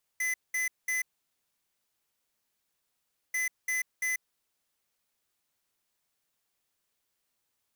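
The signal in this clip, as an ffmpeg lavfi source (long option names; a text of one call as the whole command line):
ffmpeg -f lavfi -i "aevalsrc='0.0316*(2*lt(mod(2020*t,1),0.5)-1)*clip(min(mod(mod(t,3.14),0.34),0.14-mod(mod(t,3.14),0.34))/0.005,0,1)*lt(mod(t,3.14),1.02)':duration=6.28:sample_rate=44100" out.wav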